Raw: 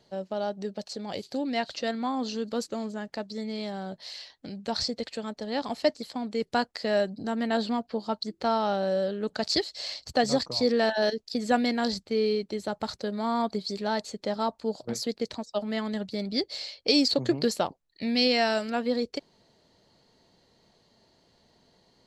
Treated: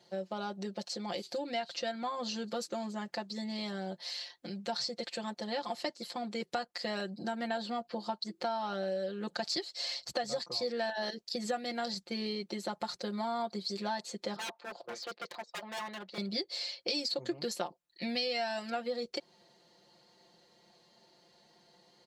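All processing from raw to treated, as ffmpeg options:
ffmpeg -i in.wav -filter_complex "[0:a]asettb=1/sr,asplit=3[link_01][link_02][link_03];[link_01]atrim=end=14.364[link_04];[link_02]atrim=start=14.36:end=16.18,asetpts=PTS-STARTPTS,afade=type=in:duration=0.004:curve=qsin,afade=type=out:start_time=1.816:duration=0.004:curve=qsin,lowpass=6300,acrossover=split=420 3300:gain=0.158 1 0.224[link_05][link_06][link_07];[link_05][link_06][link_07]amix=inputs=3:normalize=0,aeval=exprs='0.0211*(abs(mod(val(0)/0.0211+3,4)-2)-1)':channel_layout=same[link_08];[link_03]atrim=start=16.176[link_09];[link_04][link_08]acrossfade=duration=0.004:curve1=hsin:curve2=qsin[link_10];[link_10][link_09]acrossfade=duration=0.004:curve1=qsin:curve2=hsin,highpass=frequency=300:poles=1,aecho=1:1:5.7:0.98,acompressor=threshold=-31dB:ratio=4,volume=-2dB" out.wav

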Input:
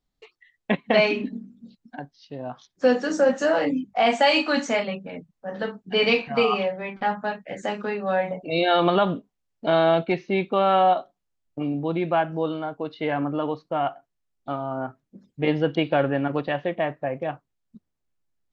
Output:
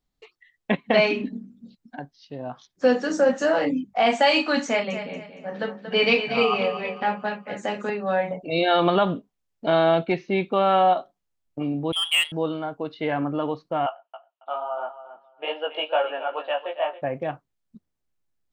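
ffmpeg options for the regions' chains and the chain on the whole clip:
ffmpeg -i in.wav -filter_complex "[0:a]asettb=1/sr,asplit=3[link_01][link_02][link_03];[link_01]atrim=end=4.674[link_04];[link_02]atrim=start=4.67:end=7.9,asetpts=PTS-STARTPTS,afade=type=in:duration=0.004:curve=qsin,afade=type=out:start_time=3.226:duration=0.004:curve=qsin,highpass=120,equalizer=frequency=2500:width=5.3:gain=2.5,aecho=1:1:232|464|696|928:0.316|0.104|0.0344|0.0114,atrim=end_sample=142443[link_05];[link_03]atrim=start=7.896[link_06];[link_04][link_05]acrossfade=duration=0.004:curve1=hsin:curve2=qsin[link_07];[link_07][link_06]acrossfade=duration=0.004:curve1=qsin:curve2=hsin,asettb=1/sr,asplit=3[link_08][link_09][link_10];[link_08]atrim=end=11.924[link_11];[link_09]atrim=start=11.92:end=12.32,asetpts=PTS-STARTPTS,afade=type=in:duration=0.004:curve=qsin,afade=type=out:start_time=0.396:duration=0.004:curve=qsin,highpass=frequency=120:width=0.5412,highpass=frequency=120:width=1.3066,lowpass=frequency=3000:width_type=q:width=0.5098,lowpass=frequency=3000:width_type=q:width=0.6013,lowpass=frequency=3000:width_type=q:width=0.9,lowpass=frequency=3000:width_type=q:width=2.563,afreqshift=-3500,adynamicsmooth=sensitivity=3:basefreq=1600[link_12];[link_10]atrim=start=12.316[link_13];[link_11][link_12]acrossfade=duration=0.004:curve1=hsin:curve2=qsin[link_14];[link_14][link_13]acrossfade=duration=0.004:curve1=qsin:curve2=hsin,asettb=1/sr,asplit=3[link_15][link_16][link_17];[link_15]atrim=end=13.864[link_18];[link_16]atrim=start=13.86:end=17.02,asetpts=PTS-STARTPTS,afade=type=in:duration=0.004:curve=qsin,afade=type=out:start_time=3.156:duration=0.004:curve=qsin,flanger=delay=16.5:depth=3.2:speed=2.3,highpass=frequency=500:width=0.5412,highpass=frequency=500:width=1.3066,equalizer=frequency=620:width_type=q:width=4:gain=4,equalizer=frequency=910:width_type=q:width=4:gain=6,equalizer=frequency=1300:width_type=q:width=4:gain=5,equalizer=frequency=2000:width_type=q:width=4:gain=-8,equalizer=frequency=2900:width_type=q:width=4:gain=10,lowpass=frequency=3300:width=0.5412,lowpass=frequency=3300:width=1.3066,aecho=1:1:275|550:0.224|0.0403,atrim=end_sample=139356[link_19];[link_17]atrim=start=17.016[link_20];[link_18][link_19]acrossfade=duration=0.004:curve1=hsin:curve2=qsin[link_21];[link_21][link_20]acrossfade=duration=0.004:curve1=qsin:curve2=hsin" out.wav

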